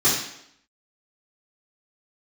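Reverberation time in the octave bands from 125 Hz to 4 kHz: 0.60 s, 0.80 s, 0.75 s, 0.75 s, 0.70 s, 0.70 s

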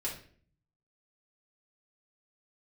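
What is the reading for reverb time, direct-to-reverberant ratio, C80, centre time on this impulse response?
0.50 s, -5.0 dB, 11.5 dB, 26 ms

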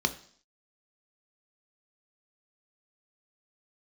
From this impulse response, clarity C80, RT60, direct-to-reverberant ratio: 19.0 dB, 0.55 s, 7.5 dB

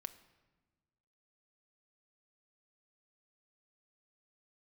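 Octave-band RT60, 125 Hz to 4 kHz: 1.8 s, 1.7 s, 1.4 s, 1.2 s, 1.1 s, 0.90 s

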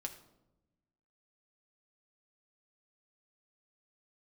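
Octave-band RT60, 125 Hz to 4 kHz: 1.5 s, 1.5 s, 1.1 s, 0.85 s, 0.60 s, 0.55 s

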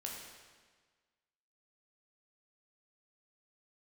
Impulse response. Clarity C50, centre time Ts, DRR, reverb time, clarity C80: 2.0 dB, 68 ms, -2.0 dB, 1.5 s, 3.5 dB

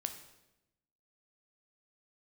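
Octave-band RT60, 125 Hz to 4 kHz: 1.2 s, 1.2 s, 1.0 s, 0.85 s, 0.85 s, 0.80 s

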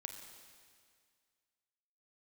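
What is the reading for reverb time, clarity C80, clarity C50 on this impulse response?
2.0 s, 6.5 dB, 5.5 dB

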